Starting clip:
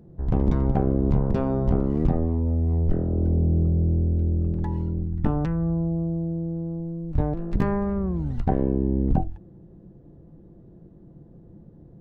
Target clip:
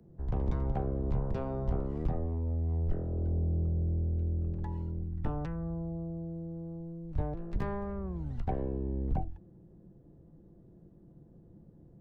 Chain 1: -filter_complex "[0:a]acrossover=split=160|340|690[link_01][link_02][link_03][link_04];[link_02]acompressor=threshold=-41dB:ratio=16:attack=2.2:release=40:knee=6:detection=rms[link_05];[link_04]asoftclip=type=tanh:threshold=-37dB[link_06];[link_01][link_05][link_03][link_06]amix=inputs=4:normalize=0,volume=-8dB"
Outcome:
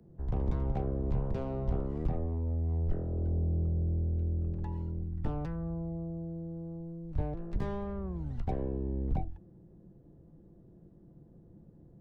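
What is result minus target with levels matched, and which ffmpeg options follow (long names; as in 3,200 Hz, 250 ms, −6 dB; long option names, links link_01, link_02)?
soft clipping: distortion +10 dB
-filter_complex "[0:a]acrossover=split=160|340|690[link_01][link_02][link_03][link_04];[link_02]acompressor=threshold=-41dB:ratio=16:attack=2.2:release=40:knee=6:detection=rms[link_05];[link_04]asoftclip=type=tanh:threshold=-26.5dB[link_06];[link_01][link_05][link_03][link_06]amix=inputs=4:normalize=0,volume=-8dB"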